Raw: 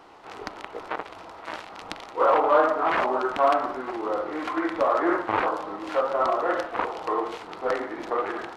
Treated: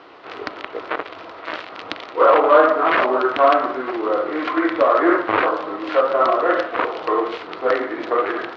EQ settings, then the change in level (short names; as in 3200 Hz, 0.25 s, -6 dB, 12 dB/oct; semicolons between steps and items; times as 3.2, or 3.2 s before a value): speaker cabinet 120–4500 Hz, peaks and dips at 130 Hz -5 dB, 200 Hz -9 dB, 850 Hz -9 dB; +8.5 dB